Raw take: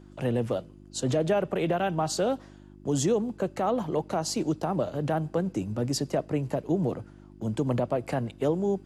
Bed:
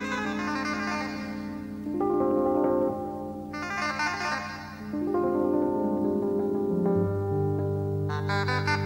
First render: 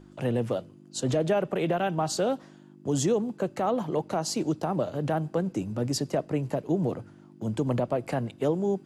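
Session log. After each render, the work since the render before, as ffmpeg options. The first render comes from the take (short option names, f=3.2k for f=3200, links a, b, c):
-af "bandreject=f=50:t=h:w=4,bandreject=f=100:t=h:w=4"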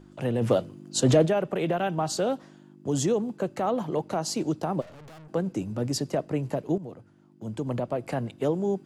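-filter_complex "[0:a]asplit=3[a][b][c];[a]afade=t=out:st=0.41:d=0.02[d];[b]acontrast=77,afade=t=in:st=0.41:d=0.02,afade=t=out:st=1.25:d=0.02[e];[c]afade=t=in:st=1.25:d=0.02[f];[d][e][f]amix=inputs=3:normalize=0,asplit=3[g][h][i];[g]afade=t=out:st=4.8:d=0.02[j];[h]aeval=exprs='(tanh(200*val(0)+0.4)-tanh(0.4))/200':c=same,afade=t=in:st=4.8:d=0.02,afade=t=out:st=5.28:d=0.02[k];[i]afade=t=in:st=5.28:d=0.02[l];[j][k][l]amix=inputs=3:normalize=0,asplit=2[m][n];[m]atrim=end=6.78,asetpts=PTS-STARTPTS,afade=t=out:st=6.776:d=0.004:c=hsin:silence=0.211349[o];[n]atrim=start=6.78,asetpts=PTS-STARTPTS,afade=t=in:d=1.51:silence=0.211349[p];[o][p]concat=n=2:v=0:a=1"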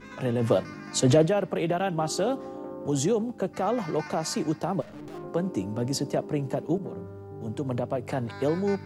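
-filter_complex "[1:a]volume=-14dB[a];[0:a][a]amix=inputs=2:normalize=0"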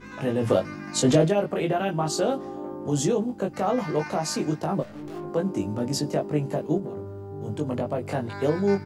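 -filter_complex "[0:a]asplit=2[a][b];[b]adelay=20,volume=-3dB[c];[a][c]amix=inputs=2:normalize=0"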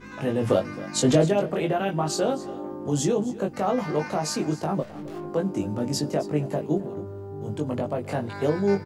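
-af "aecho=1:1:265:0.133"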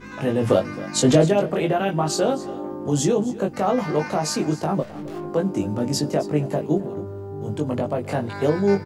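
-af "volume=3.5dB"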